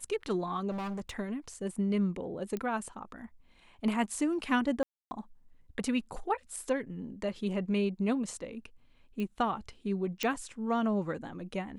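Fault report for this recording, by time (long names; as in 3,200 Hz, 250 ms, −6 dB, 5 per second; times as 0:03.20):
0:00.70–0:01.11: clipping −34 dBFS
0:02.57: click −23 dBFS
0:04.83–0:05.11: drop-out 280 ms
0:09.20: click −25 dBFS
0:10.23: click −16 dBFS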